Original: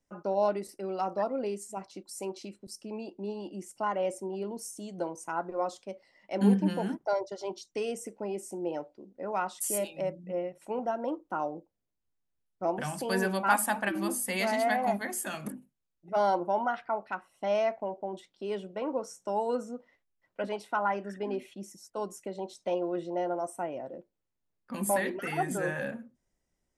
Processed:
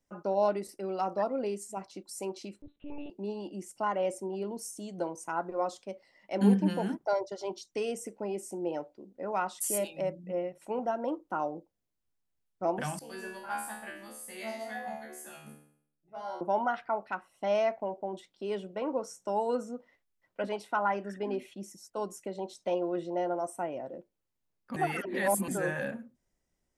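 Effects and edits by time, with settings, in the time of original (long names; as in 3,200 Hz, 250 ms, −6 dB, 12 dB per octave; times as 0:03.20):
0:02.62–0:03.10: one-pitch LPC vocoder at 8 kHz 290 Hz
0:12.99–0:16.41: tuned comb filter 74 Hz, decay 0.61 s, mix 100%
0:24.76–0:25.48: reverse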